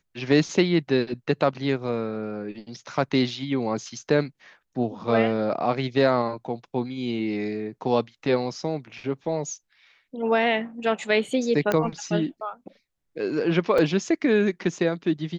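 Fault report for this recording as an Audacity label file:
11.720000	11.720000	pop -10 dBFS
13.780000	13.780000	gap 4.2 ms

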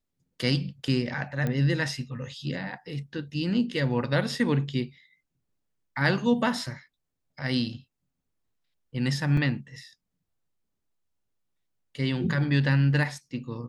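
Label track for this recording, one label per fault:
1.470000	1.470000	pop -17 dBFS
9.370000	9.370000	gap 3.3 ms

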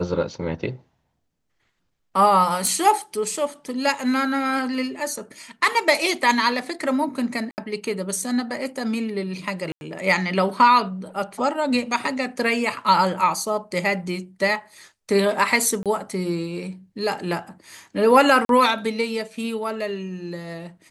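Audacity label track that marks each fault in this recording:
2.670000	2.670000	pop
7.510000	7.580000	gap 69 ms
9.720000	9.810000	gap 91 ms
15.830000	15.860000	gap 27 ms
18.450000	18.490000	gap 42 ms

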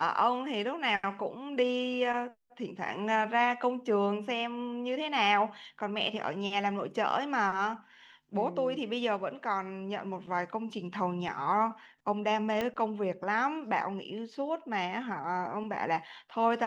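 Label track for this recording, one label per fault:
12.610000	12.610000	pop -18 dBFS

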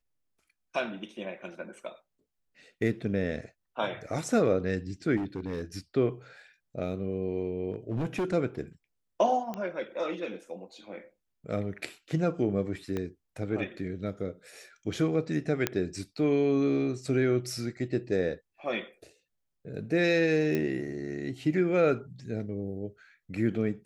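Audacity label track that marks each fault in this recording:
5.160000	5.620000	clipped -28.5 dBFS
7.720000	8.340000	clipped -26 dBFS
9.540000	9.540000	pop -22 dBFS
12.970000	12.970000	pop -20 dBFS
15.670000	15.670000	pop -10 dBFS
20.550000	20.550000	pop -17 dBFS

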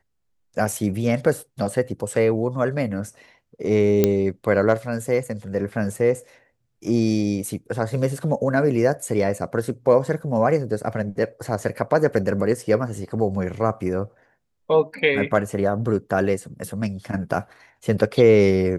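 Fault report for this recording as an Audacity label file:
4.040000	4.040000	pop -4 dBFS

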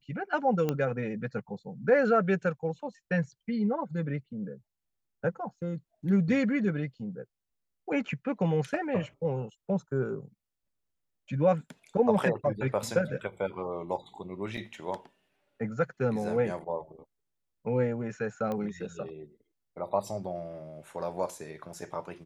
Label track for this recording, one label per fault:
0.690000	0.690000	pop -16 dBFS
14.570000	14.580000	gap 5.1 ms
18.520000	18.520000	pop -22 dBFS

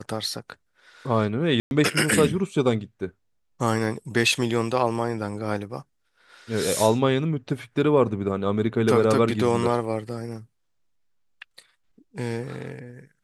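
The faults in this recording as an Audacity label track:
1.600000	1.710000	gap 0.111 s

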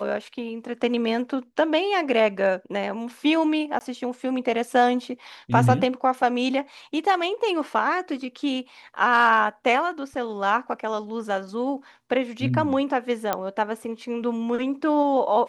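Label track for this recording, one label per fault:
3.790000	3.810000	gap 19 ms
13.330000	13.330000	pop -9 dBFS

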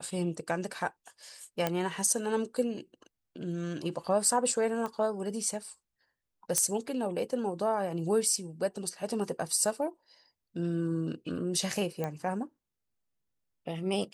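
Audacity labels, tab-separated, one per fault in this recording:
1.670000	1.670000	pop -14 dBFS
4.860000	4.860000	pop -23 dBFS
6.580000	6.580000	pop -10 dBFS
12.040000	12.040000	pop -20 dBFS

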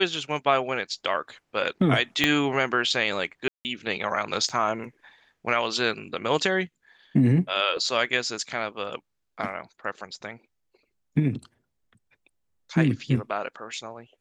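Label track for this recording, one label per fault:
2.240000	2.240000	pop -6 dBFS
3.480000	3.650000	gap 0.169 s
4.490000	4.500000	gap 5.5 ms

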